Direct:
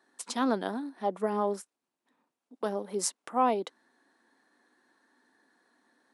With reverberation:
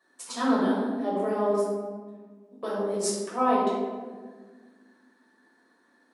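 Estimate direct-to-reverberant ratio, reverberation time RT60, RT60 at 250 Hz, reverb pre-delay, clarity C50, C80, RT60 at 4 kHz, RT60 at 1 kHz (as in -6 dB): -8.0 dB, 1.5 s, 2.4 s, 6 ms, -0.5 dB, 2.5 dB, 0.80 s, 1.3 s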